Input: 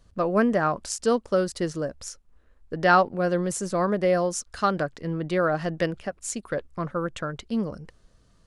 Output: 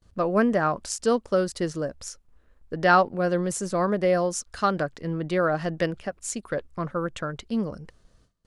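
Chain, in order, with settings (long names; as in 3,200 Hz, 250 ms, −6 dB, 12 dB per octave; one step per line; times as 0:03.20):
noise gate with hold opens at −49 dBFS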